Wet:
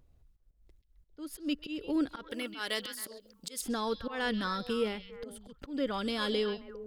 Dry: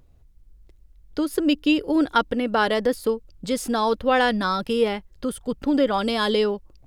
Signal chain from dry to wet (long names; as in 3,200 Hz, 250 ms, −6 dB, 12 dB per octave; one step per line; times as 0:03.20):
dynamic equaliser 750 Hz, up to −7 dB, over −34 dBFS, Q 1.4
volume swells 185 ms
0:02.29–0:03.61: spectral tilt +3.5 dB per octave
echo through a band-pass that steps 134 ms, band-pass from 3,600 Hz, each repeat −1.4 octaves, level −6.5 dB
level −8.5 dB